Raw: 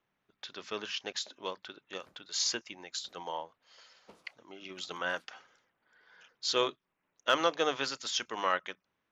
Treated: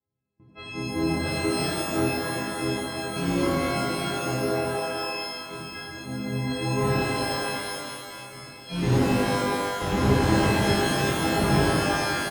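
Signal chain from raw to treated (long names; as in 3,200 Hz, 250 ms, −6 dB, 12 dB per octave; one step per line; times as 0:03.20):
every partial snapped to a pitch grid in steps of 4 semitones
noise gate with hold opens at −58 dBFS
sine wavefolder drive 17 dB, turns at −9 dBFS
resonant band-pass 140 Hz, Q 1.4
single-tap delay 1,130 ms −23 dB
wrong playback speed 45 rpm record played at 33 rpm
reverb with rising layers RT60 2.2 s, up +12 semitones, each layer −2 dB, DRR −7 dB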